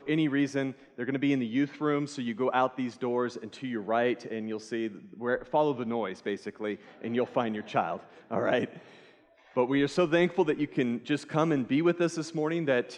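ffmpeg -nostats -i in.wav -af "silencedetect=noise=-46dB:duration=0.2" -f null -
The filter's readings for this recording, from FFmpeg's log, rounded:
silence_start: 9.11
silence_end: 9.52 | silence_duration: 0.41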